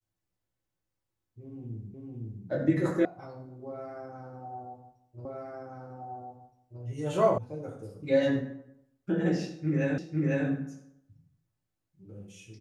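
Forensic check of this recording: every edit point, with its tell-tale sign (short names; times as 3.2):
1.94 repeat of the last 0.51 s
3.05 sound cut off
5.25 repeat of the last 1.57 s
7.38 sound cut off
9.98 repeat of the last 0.5 s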